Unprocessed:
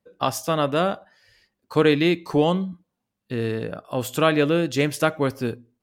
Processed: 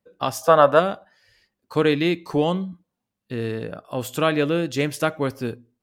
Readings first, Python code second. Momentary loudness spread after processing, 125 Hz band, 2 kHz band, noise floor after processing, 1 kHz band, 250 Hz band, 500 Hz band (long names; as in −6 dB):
15 LU, −1.5 dB, 0.0 dB, −82 dBFS, +3.5 dB, −1.5 dB, +1.5 dB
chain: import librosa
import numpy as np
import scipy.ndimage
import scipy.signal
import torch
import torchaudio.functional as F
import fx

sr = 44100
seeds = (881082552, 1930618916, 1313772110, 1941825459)

y = fx.spec_box(x, sr, start_s=0.42, length_s=0.37, low_hz=460.0, high_hz=1800.0, gain_db=11)
y = y * 10.0 ** (-1.5 / 20.0)